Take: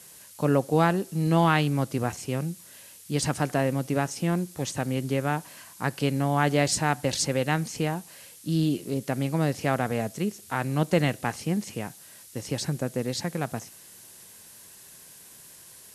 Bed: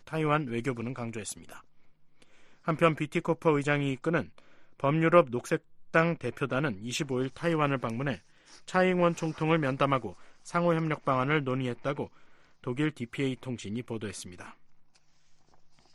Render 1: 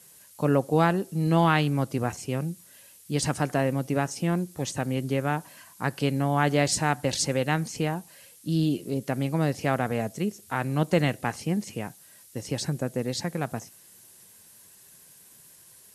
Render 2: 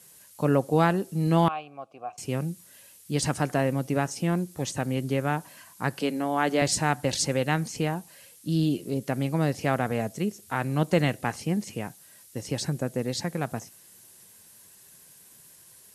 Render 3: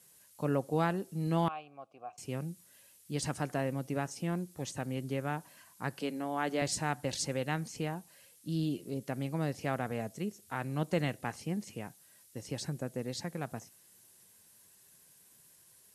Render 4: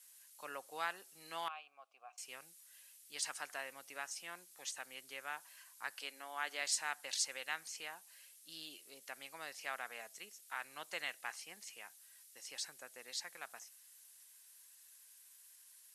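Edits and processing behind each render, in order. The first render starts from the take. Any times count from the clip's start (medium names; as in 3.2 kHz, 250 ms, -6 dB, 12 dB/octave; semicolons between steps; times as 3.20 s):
noise reduction 6 dB, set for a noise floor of -49 dBFS
1.48–2.18 s: vowel filter a; 6.01–6.62 s: elliptic high-pass 170 Hz
trim -8.5 dB
high-pass 1.4 kHz 12 dB/octave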